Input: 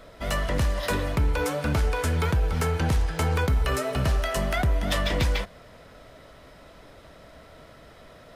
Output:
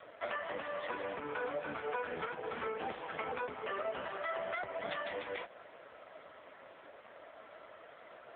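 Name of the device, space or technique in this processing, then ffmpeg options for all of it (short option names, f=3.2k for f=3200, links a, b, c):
voicemail: -filter_complex "[0:a]asettb=1/sr,asplit=3[a][b][c];[a]atrim=end=2.784[d];[b]atrim=start=2.78:end=3.68,asetpts=PTS-STARTPTS,afade=t=in:d=0.004:c=qsin,afade=t=out:st=0.896:d=0.004:c=qsin,adynamicequalizer=threshold=0.00398:dfrequency=1600:dqfactor=4.3:tfrequency=1600:tqfactor=4.3:attack=5:release=100:ratio=0.375:range=2:mode=cutabove:tftype=bell[e];[c]atrim=start=3.676[f];[d][e]acrossfade=d=0.004:c1=hsin:c2=qsin[g];[g][f]acrossfade=d=0.004:c1=qsin:c2=hsin,highpass=440,lowpass=3.1k,acompressor=threshold=-34dB:ratio=8,volume=2dB" -ar 8000 -c:a libopencore_amrnb -b:a 5150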